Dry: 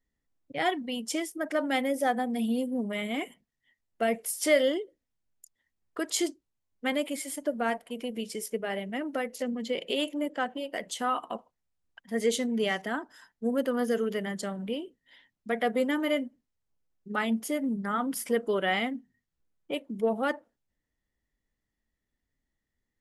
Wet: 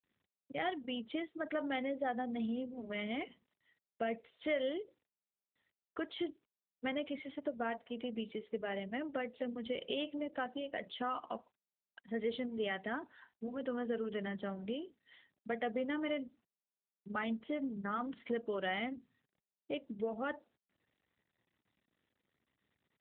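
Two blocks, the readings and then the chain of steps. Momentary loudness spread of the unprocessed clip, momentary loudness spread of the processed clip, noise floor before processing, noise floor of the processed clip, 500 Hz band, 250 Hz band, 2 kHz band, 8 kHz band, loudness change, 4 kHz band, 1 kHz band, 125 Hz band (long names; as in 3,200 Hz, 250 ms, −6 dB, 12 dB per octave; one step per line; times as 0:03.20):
9 LU, 7 LU, −85 dBFS, below −85 dBFS, −9.0 dB, −8.5 dB, −9.0 dB, below −40 dB, −9.5 dB, −10.0 dB, −9.0 dB, can't be measured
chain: downward compressor 2 to 1, threshold −33 dBFS, peak gain reduction 9 dB
level −3.5 dB
AMR narrowband 12.2 kbit/s 8,000 Hz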